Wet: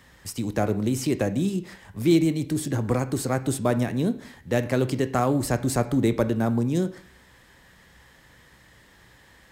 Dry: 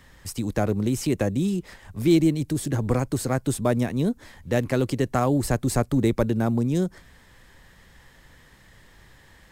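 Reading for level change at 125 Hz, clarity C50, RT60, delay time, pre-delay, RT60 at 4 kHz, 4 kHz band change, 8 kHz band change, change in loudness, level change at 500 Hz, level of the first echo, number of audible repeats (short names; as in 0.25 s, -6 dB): -1.5 dB, 15.0 dB, 0.60 s, none, 15 ms, 0.50 s, 0.0 dB, 0.0 dB, -0.5 dB, 0.0 dB, none, none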